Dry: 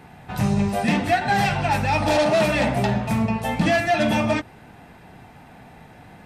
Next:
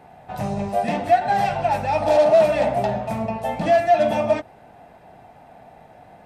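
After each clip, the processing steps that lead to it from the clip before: peaking EQ 650 Hz +13.5 dB 0.95 oct; trim -7.5 dB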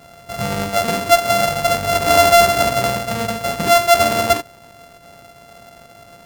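sorted samples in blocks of 64 samples; trim +3.5 dB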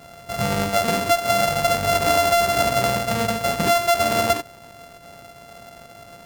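compression 10:1, threshold -15 dBFS, peak gain reduction 9 dB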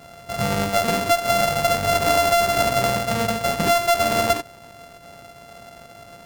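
tracing distortion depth 0.11 ms

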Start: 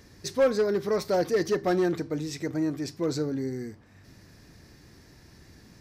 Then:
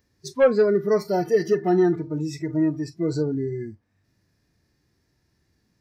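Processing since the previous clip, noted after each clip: harmonic-percussive split percussive -9 dB; spectral noise reduction 20 dB; trim +6.5 dB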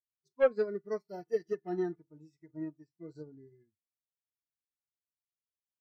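upward expansion 2.5:1, over -38 dBFS; trim -7 dB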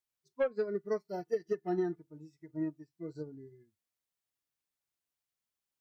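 compression 12:1, threshold -32 dBFS, peak gain reduction 13 dB; trim +4.5 dB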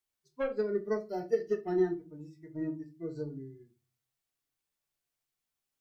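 reverberation RT60 0.30 s, pre-delay 3 ms, DRR 3.5 dB; trim +1 dB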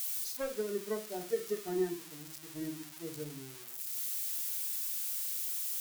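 zero-crossing glitches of -27 dBFS; trim -4.5 dB

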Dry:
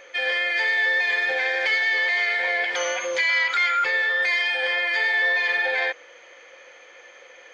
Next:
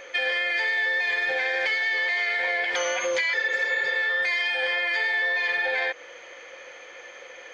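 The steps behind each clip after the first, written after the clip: spectral replace 3.36–3.93 s, 290–4700 Hz after; bass shelf 210 Hz +4.5 dB; compression, threshold -26 dBFS, peak gain reduction 8.5 dB; trim +3.5 dB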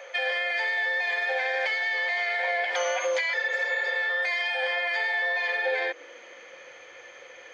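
high-pass sweep 630 Hz -> 100 Hz, 5.43–6.85 s; trim -3.5 dB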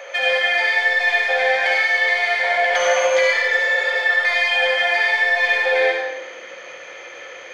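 in parallel at -8.5 dB: saturation -29.5 dBFS, distortion -11 dB; on the sum: algorithmic reverb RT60 0.9 s, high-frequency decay 0.9×, pre-delay 30 ms, DRR -0.5 dB; trim +4.5 dB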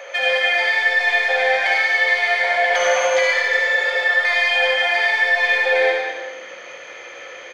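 delay 206 ms -9.5 dB

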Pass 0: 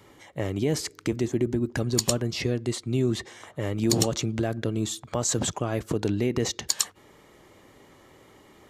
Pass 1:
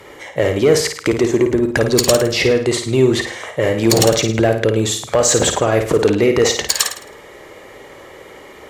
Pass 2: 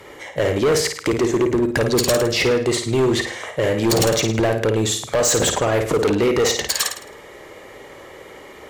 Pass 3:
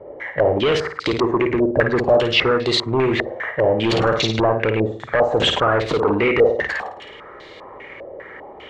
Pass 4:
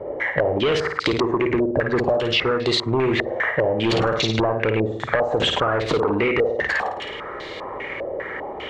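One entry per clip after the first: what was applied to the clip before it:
ten-band graphic EQ 125 Hz -4 dB, 250 Hz -5 dB, 500 Hz +8 dB, 2 kHz +6 dB; Chebyshev shaper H 5 -15 dB, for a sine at -6.5 dBFS; flutter echo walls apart 9.2 m, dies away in 0.47 s; trim +5.5 dB
overload inside the chain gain 12 dB; trim -1.5 dB
step-sequenced low-pass 5 Hz 600–4000 Hz; trim -1.5 dB
compression 6:1, threshold -25 dBFS, peak gain reduction 14 dB; trim +7 dB

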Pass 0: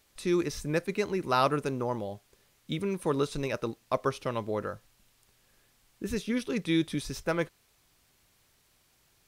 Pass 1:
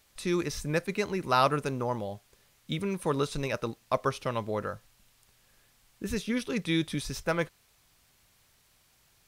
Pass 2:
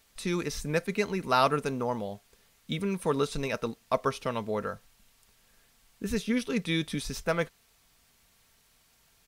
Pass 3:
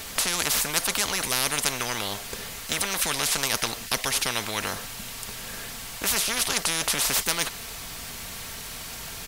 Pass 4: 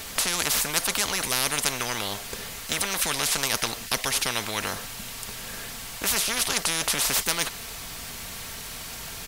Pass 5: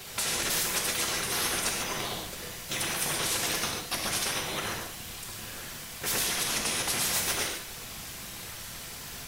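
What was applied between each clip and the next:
peaking EQ 340 Hz -4.5 dB 0.99 oct; trim +2 dB
comb 4.4 ms, depth 35%
spectrum-flattening compressor 10:1; trim +6.5 dB
no audible change
whisper effect; gated-style reverb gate 170 ms flat, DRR -0.5 dB; trim -7 dB

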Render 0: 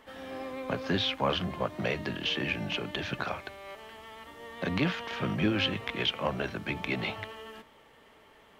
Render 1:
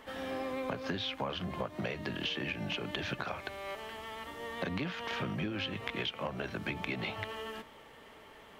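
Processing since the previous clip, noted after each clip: compression 12:1, threshold -36 dBFS, peak gain reduction 14.5 dB; trim +3.5 dB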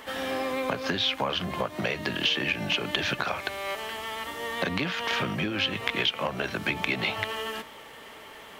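tilt EQ +1.5 dB/octave; trim +8.5 dB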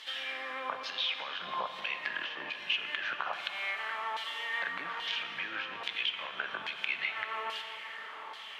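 compression, threshold -33 dBFS, peak gain reduction 12 dB; LFO band-pass saw down 1.2 Hz 910–4000 Hz; plate-style reverb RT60 4.5 s, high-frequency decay 0.8×, DRR 6 dB; trim +6.5 dB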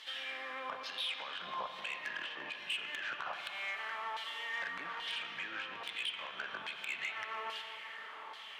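saturation -26 dBFS, distortion -15 dB; trim -3.5 dB

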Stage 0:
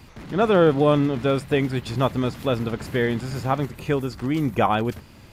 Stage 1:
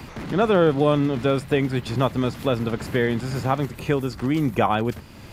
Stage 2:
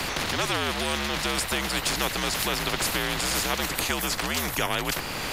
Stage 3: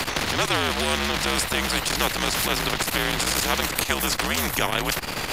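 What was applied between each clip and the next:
three bands compressed up and down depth 40%
frequency shift -73 Hz; spectrum-flattening compressor 4:1
transformer saturation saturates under 930 Hz; trim +5 dB

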